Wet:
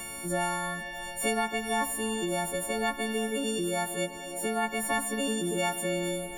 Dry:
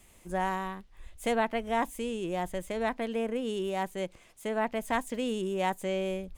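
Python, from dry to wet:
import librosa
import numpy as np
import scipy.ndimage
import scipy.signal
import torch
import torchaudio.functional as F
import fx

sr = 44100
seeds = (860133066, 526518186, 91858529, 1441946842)

y = fx.freq_snap(x, sr, grid_st=4)
y = fx.rev_schroeder(y, sr, rt60_s=3.4, comb_ms=29, drr_db=9.0)
y = fx.band_squash(y, sr, depth_pct=70)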